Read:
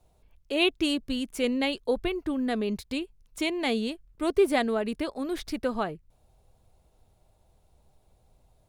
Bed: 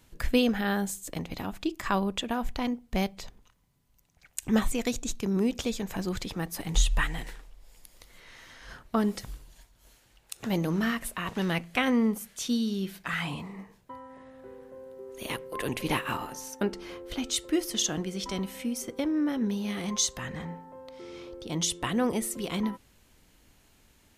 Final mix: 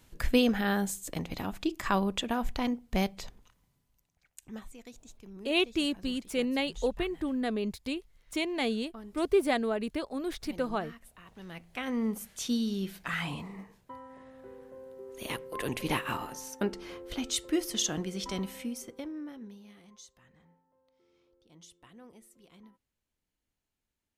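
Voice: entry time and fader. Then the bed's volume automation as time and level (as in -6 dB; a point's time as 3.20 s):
4.95 s, -3.0 dB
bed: 3.65 s -0.5 dB
4.62 s -20 dB
11.32 s -20 dB
12.22 s -2 dB
18.51 s -2 dB
20.00 s -26 dB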